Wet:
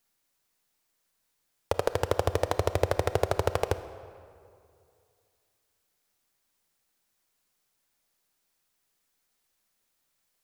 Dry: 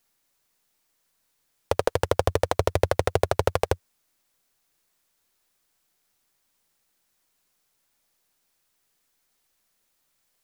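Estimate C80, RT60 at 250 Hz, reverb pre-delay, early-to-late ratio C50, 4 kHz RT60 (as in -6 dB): 13.5 dB, 2.3 s, 26 ms, 12.5 dB, 1.5 s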